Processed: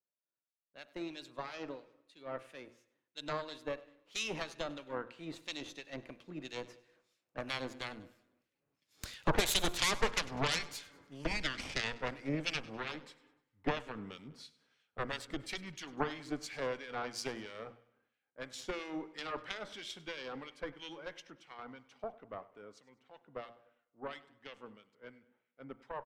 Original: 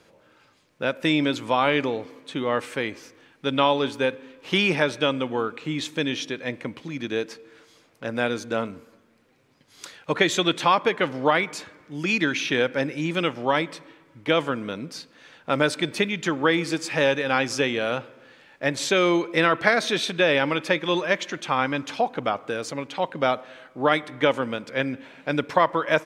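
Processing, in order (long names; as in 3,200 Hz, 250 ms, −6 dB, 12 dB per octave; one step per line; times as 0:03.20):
source passing by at 0:09.98, 29 m/s, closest 27 metres
harmonic generator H 8 −7 dB, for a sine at −5.5 dBFS
downward compressor 4 to 1, threshold −37 dBFS, peak gain reduction 21.5 dB
two-band tremolo in antiphase 3 Hz, depth 70%, crossover 1,700 Hz
hum removal 117.7 Hz, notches 14
on a send: repeating echo 100 ms, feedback 56%, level −18.5 dB
on the sum: multiband upward and downward expander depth 70%
level +4.5 dB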